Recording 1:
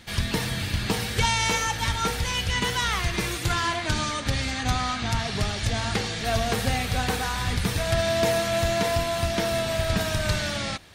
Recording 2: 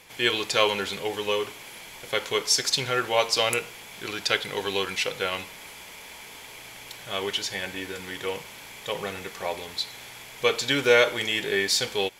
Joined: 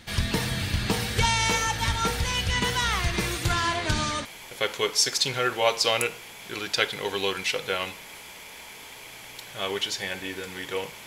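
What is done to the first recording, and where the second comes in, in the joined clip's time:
recording 1
0:03.67: mix in recording 2 from 0:01.19 0.58 s −17 dB
0:04.25: continue with recording 2 from 0:01.77

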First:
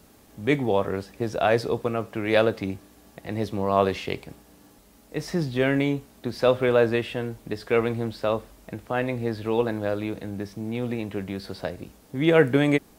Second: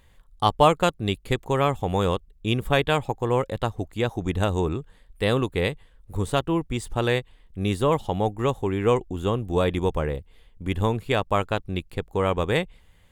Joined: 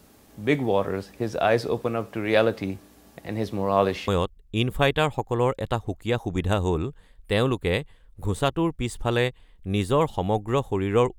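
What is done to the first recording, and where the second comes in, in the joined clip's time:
first
0:04.08: continue with second from 0:01.99

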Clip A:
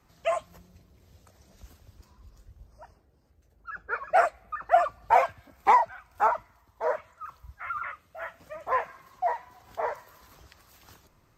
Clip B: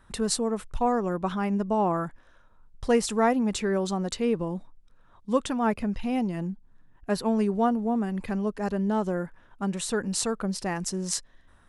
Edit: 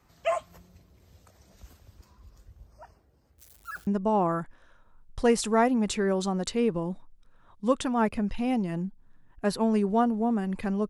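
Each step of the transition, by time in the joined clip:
clip A
0:03.38–0:03.87: spike at every zero crossing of −41.5 dBFS
0:03.87: continue with clip B from 0:01.52

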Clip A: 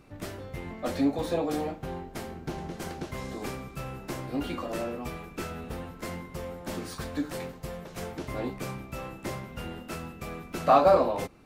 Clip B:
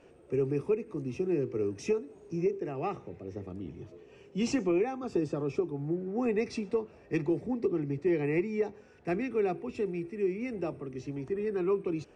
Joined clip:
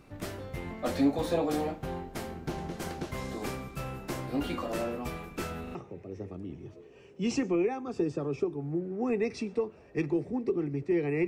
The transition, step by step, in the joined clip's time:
clip A
0:05.63: stutter in place 0.04 s, 3 plays
0:05.75: continue with clip B from 0:02.91

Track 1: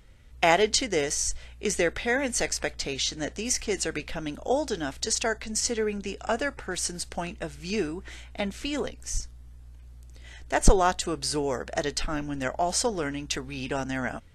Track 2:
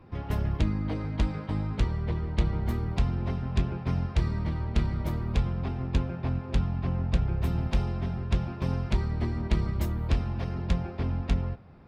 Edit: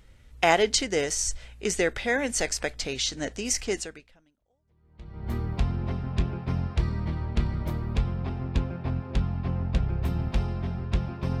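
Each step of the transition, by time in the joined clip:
track 1
0:04.54: continue with track 2 from 0:01.93, crossfade 1.60 s exponential

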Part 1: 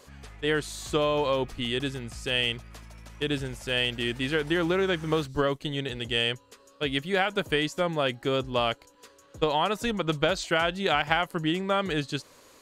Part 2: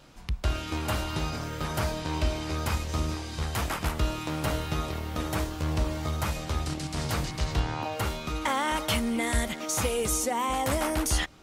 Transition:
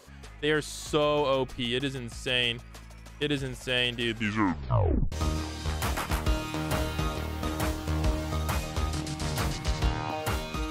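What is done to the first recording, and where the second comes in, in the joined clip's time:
part 1
0:04.05: tape stop 1.07 s
0:05.12: continue with part 2 from 0:02.85

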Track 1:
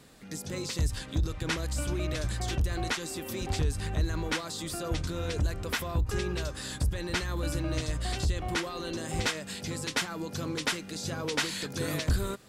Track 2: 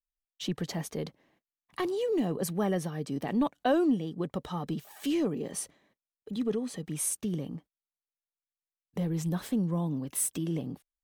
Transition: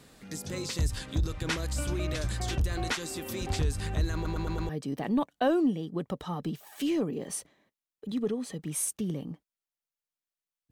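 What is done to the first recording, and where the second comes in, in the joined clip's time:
track 1
0:04.14: stutter in place 0.11 s, 5 plays
0:04.69: continue with track 2 from 0:02.93

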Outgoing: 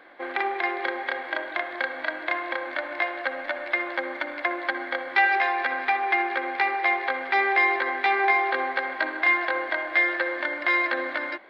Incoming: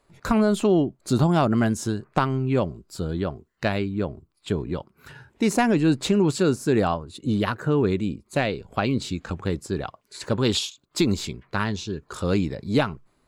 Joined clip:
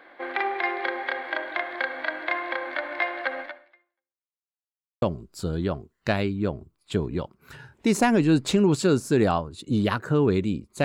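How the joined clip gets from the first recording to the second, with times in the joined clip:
outgoing
0:03.41–0:04.40: fade out exponential
0:04.40–0:05.02: silence
0:05.02: continue with incoming from 0:02.58

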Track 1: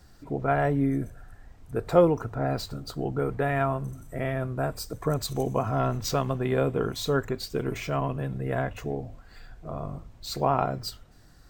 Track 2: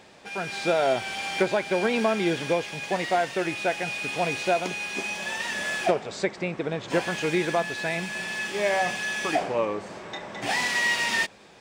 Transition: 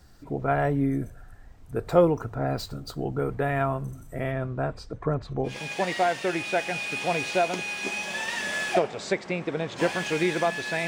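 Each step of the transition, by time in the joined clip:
track 1
0:04.31–0:05.59: low-pass filter 7,000 Hz → 1,200 Hz
0:05.51: continue with track 2 from 0:02.63, crossfade 0.16 s

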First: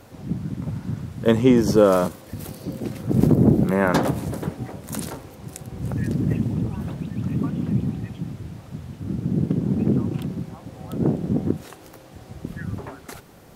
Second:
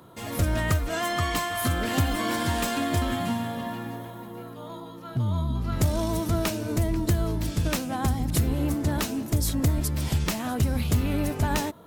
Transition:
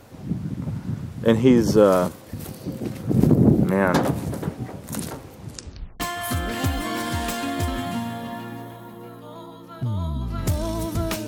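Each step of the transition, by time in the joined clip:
first
0:05.41: tape stop 0.59 s
0:06.00: continue with second from 0:01.34

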